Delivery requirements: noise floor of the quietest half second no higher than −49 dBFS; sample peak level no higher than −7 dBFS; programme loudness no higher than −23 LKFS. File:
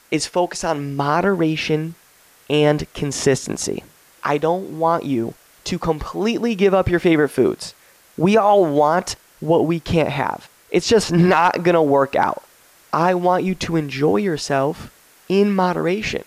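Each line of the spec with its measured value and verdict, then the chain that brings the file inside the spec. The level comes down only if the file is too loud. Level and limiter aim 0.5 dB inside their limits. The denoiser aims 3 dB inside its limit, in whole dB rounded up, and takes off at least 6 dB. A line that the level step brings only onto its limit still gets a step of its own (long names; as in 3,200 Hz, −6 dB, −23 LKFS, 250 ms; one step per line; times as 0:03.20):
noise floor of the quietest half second −52 dBFS: in spec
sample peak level −5.0 dBFS: out of spec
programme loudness −18.5 LKFS: out of spec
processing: level −5 dB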